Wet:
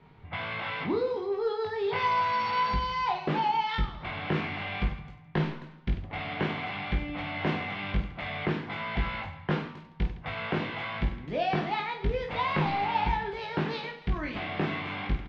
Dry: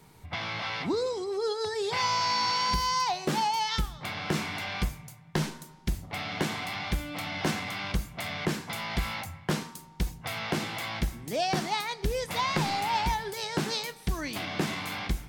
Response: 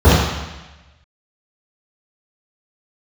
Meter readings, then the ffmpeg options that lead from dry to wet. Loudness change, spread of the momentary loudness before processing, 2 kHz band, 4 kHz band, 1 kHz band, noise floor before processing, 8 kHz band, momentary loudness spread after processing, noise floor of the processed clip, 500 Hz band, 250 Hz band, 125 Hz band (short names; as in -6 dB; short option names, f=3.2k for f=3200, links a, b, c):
-0.5 dB, 9 LU, +0.5 dB, -6.5 dB, +1.0 dB, -51 dBFS, under -25 dB, 7 LU, -50 dBFS, +1.0 dB, +0.5 dB, +1.5 dB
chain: -af "lowpass=f=3.1k:w=0.5412,lowpass=f=3.1k:w=1.3066,aecho=1:1:20|50|95|162.5|263.8:0.631|0.398|0.251|0.158|0.1,volume=-1.5dB"